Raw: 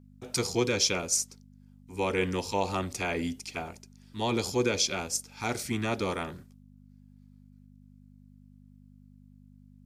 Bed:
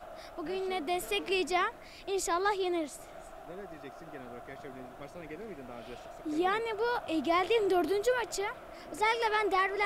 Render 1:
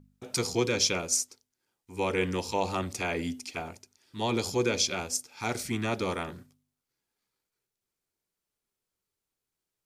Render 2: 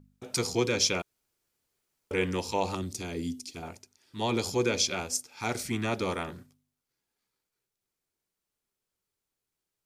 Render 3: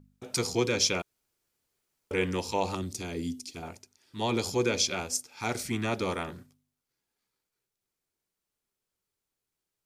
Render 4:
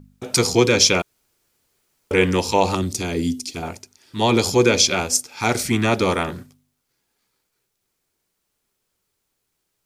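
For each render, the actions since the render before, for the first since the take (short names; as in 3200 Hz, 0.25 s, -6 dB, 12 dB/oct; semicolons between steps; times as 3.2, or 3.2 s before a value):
de-hum 50 Hz, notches 5
1.02–2.11 room tone; 2.75–3.63 band shelf 1200 Hz -11.5 dB 2.7 oct
nothing audible
gain +11.5 dB; limiter -3 dBFS, peak gain reduction 1.5 dB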